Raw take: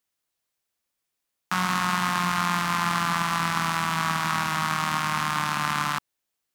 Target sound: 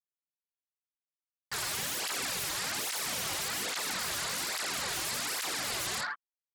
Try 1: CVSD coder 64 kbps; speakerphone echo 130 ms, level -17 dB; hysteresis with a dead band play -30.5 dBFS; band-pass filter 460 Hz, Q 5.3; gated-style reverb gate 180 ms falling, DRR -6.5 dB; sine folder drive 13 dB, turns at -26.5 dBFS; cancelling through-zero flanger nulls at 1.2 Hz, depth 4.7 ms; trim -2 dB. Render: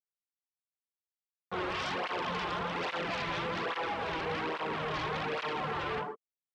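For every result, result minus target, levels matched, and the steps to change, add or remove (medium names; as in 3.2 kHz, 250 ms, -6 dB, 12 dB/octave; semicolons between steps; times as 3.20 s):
500 Hz band +10.5 dB; hysteresis with a dead band: distortion -8 dB
change: band-pass filter 1.6 kHz, Q 5.3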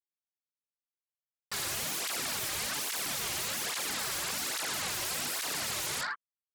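hysteresis with a dead band: distortion -8 dB
change: hysteresis with a dead band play -23.5 dBFS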